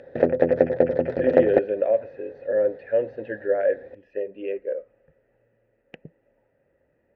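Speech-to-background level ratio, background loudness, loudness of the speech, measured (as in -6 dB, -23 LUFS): -4.5 dB, -21.5 LUFS, -26.0 LUFS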